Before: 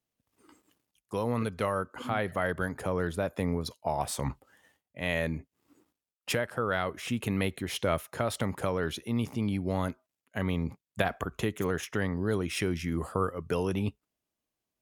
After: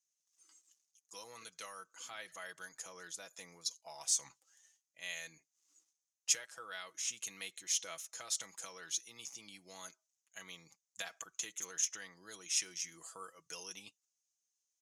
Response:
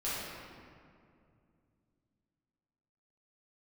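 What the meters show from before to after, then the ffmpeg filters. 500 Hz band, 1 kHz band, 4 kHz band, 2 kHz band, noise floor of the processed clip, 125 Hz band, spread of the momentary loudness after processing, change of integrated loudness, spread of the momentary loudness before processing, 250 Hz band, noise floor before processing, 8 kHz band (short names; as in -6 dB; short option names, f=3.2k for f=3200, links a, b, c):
-24.5 dB, -18.5 dB, -2.0 dB, -12.0 dB, under -85 dBFS, under -35 dB, 17 LU, -8.0 dB, 5 LU, -31.0 dB, under -85 dBFS, +8.0 dB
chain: -af "bandpass=f=6.4k:t=q:w=6:csg=0,aecho=1:1:6.1:0.57,volume=12.5dB"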